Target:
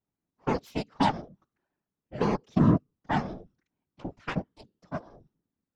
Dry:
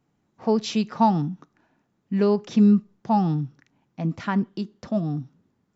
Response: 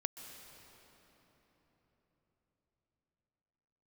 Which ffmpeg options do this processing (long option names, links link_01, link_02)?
-af "aeval=exprs='0.398*(cos(1*acos(clip(val(0)/0.398,-1,1)))-cos(1*PI/2))+0.0708*(cos(7*acos(clip(val(0)/0.398,-1,1)))-cos(7*PI/2))':channel_layout=same,afftfilt=real='hypot(re,im)*cos(2*PI*random(0))':imag='hypot(re,im)*sin(2*PI*random(1))':win_size=512:overlap=0.75"